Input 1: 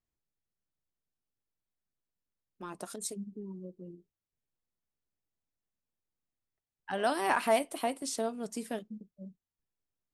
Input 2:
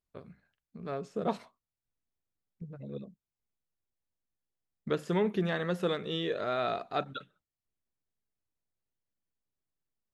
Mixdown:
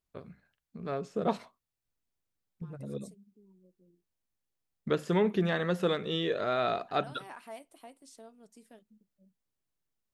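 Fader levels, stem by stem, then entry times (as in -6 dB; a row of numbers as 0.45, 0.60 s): -18.5, +2.0 dB; 0.00, 0.00 s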